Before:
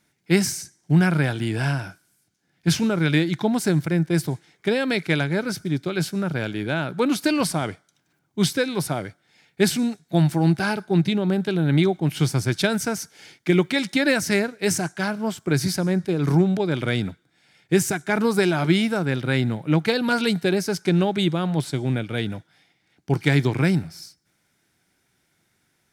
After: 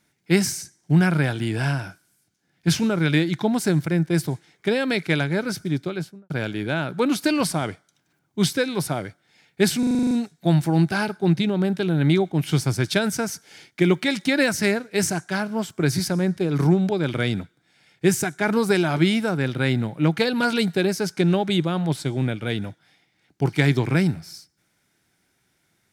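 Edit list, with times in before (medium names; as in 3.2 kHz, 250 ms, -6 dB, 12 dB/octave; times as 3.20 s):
5.76–6.30 s: studio fade out
9.79 s: stutter 0.04 s, 9 plays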